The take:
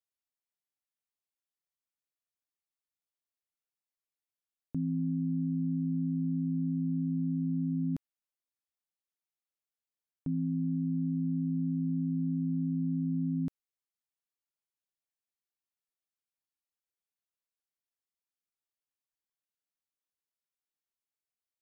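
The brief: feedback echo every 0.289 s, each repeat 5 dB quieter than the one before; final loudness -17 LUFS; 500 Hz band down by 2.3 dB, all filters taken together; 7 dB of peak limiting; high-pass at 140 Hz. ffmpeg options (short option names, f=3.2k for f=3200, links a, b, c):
-af "highpass=140,equalizer=f=500:t=o:g=-5,alimiter=level_in=10dB:limit=-24dB:level=0:latency=1,volume=-10dB,aecho=1:1:289|578|867|1156|1445|1734|2023:0.562|0.315|0.176|0.0988|0.0553|0.031|0.0173,volume=27.5dB"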